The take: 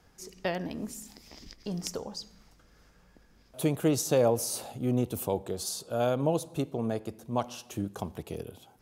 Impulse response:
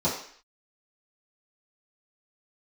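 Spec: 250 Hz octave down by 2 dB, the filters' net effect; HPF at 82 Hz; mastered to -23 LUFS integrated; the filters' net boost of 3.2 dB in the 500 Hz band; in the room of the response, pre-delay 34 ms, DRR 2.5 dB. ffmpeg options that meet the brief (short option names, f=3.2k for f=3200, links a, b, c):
-filter_complex "[0:a]highpass=82,equalizer=f=250:t=o:g=-4,equalizer=f=500:t=o:g=4.5,asplit=2[a][b];[1:a]atrim=start_sample=2205,adelay=34[c];[b][c]afir=irnorm=-1:irlink=0,volume=-14.5dB[d];[a][d]amix=inputs=2:normalize=0,volume=3dB"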